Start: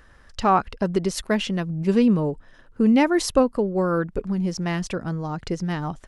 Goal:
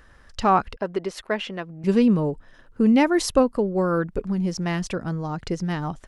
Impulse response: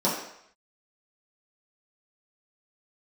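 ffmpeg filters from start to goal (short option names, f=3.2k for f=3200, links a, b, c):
-filter_complex "[0:a]asettb=1/sr,asplit=3[a][b][c];[a]atrim=end=0.764[d];[b]atrim=start=0.76:end=1.84,asetpts=PTS-STARTPTS,afade=t=in:d=0.004:c=qsin,afade=t=out:st=1.076:d=0.004:c=qsin,bass=f=250:g=-15,treble=f=4k:g=-12[e];[c]atrim=start=1.836[f];[d][e]acrossfade=d=0.004:c1=hsin:c2=qsin[g];[g][f]acrossfade=d=0.004:c1=qsin:c2=hsin"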